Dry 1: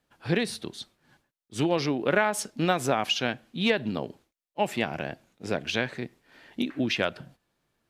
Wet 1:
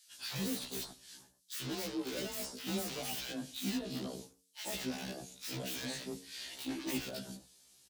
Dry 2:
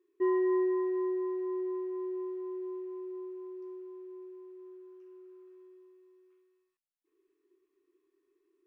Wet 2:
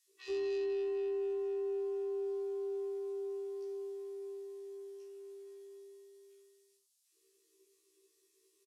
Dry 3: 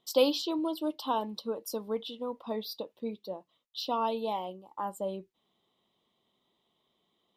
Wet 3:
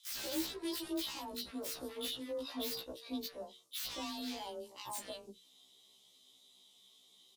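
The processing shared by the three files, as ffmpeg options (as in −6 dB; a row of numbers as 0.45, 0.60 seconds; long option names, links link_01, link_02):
-filter_complex "[0:a]lowpass=frequency=12000:width=0.5412,lowpass=frequency=12000:width=1.3066,aeval=exprs='(tanh(44.7*val(0)+0.2)-tanh(0.2))/44.7':channel_layout=same,acrossover=split=380[link_01][link_02];[link_02]acompressor=threshold=-45dB:ratio=4[link_03];[link_01][link_03]amix=inputs=2:normalize=0,afreqshift=26,bandreject=frequency=91.34:width_type=h:width=4,bandreject=frequency=182.68:width_type=h:width=4,bandreject=frequency=274.02:width_type=h:width=4,bandreject=frequency=365.36:width_type=h:width=4,bandreject=frequency=456.7:width_type=h:width=4,acrossover=split=4100[link_04][link_05];[link_05]aeval=exprs='0.0133*sin(PI/2*10*val(0)/0.0133)':channel_layout=same[link_06];[link_04][link_06]amix=inputs=2:normalize=0,acrossover=split=1300[link_07][link_08];[link_07]adelay=90[link_09];[link_09][link_08]amix=inputs=2:normalize=0,afftfilt=real='re*1.73*eq(mod(b,3),0)':imag='im*1.73*eq(mod(b,3),0)':win_size=2048:overlap=0.75,volume=2dB"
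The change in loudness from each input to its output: −11.5, −4.5, −7.0 LU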